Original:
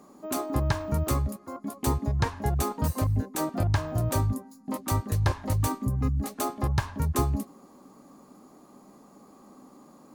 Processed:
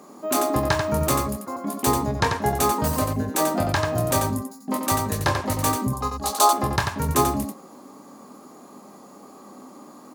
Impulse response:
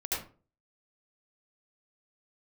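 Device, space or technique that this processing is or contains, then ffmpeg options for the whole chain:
slapback doubling: -filter_complex "[0:a]asplit=3[a][b][c];[b]adelay=24,volume=-7dB[d];[c]adelay=90,volume=-5.5dB[e];[a][d][e]amix=inputs=3:normalize=0,highpass=f=270:p=1,asettb=1/sr,asplit=3[f][g][h];[f]atrim=end=5.934[i];[g]atrim=start=5.93:end=6.53,asetpts=PTS-STARTPTS,afade=t=in:d=0.004:c=qsin,afade=t=out:st=0.596:d=0.004:c=qsin,equalizer=f=125:t=o:w=1:g=-10,equalizer=f=250:t=o:w=1:g=-9,equalizer=f=1k:t=o:w=1:g=10,equalizer=f=2k:t=o:w=1:g=-9,equalizer=f=4k:t=o:w=1:g=9,equalizer=f=8k:t=o:w=1:g=4[j];[h]atrim=start=6.526[k];[i][j]acrossfade=d=0.004:c1=hsin:c2=qsin[l];[l][k]acrossfade=d=0.004:c1=qsin:c2=hsin,volume=8dB"

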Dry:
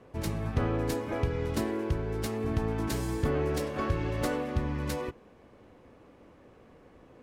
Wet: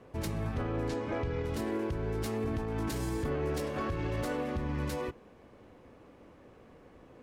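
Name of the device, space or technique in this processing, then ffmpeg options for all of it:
stacked limiters: -filter_complex "[0:a]asettb=1/sr,asplit=3[a][b][c];[a]atrim=end=0.884[d];[b]atrim=start=0.88:end=1.44,asetpts=PTS-STARTPTS,afade=t=in:d=0.004:c=qsin,afade=t=out:st=0.556:d=0.004:c=qsin,lowpass=6k[e];[c]atrim=start=1.436[f];[d][e]acrossfade=d=0.004:c1=hsin:c2=qsin[g];[g][f]acrossfade=d=0.004:c1=qsin:c2=hsin,alimiter=limit=-22dB:level=0:latency=1:release=143,alimiter=level_in=1.5dB:limit=-24dB:level=0:latency=1:release=11,volume=-1.5dB"

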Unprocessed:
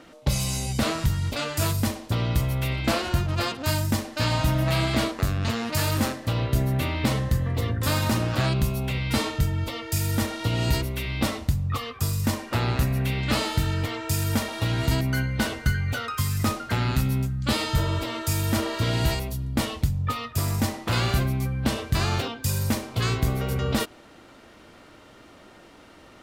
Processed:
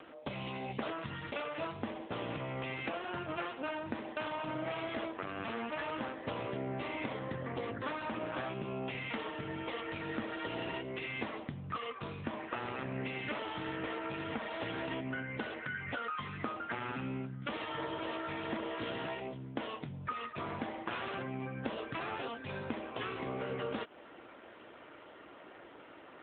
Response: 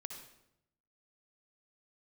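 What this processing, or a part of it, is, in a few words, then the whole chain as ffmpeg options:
voicemail: -af "highpass=310,lowpass=3.2k,acompressor=threshold=-33dB:ratio=10" -ar 8000 -c:a libopencore_amrnb -b:a 7950

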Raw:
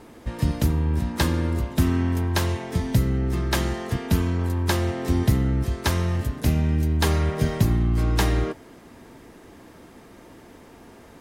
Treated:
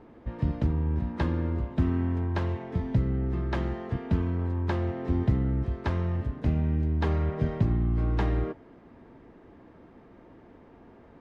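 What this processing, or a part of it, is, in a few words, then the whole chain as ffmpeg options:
phone in a pocket: -af "lowpass=3.3k,highshelf=f=2k:g=-11,volume=-4.5dB"

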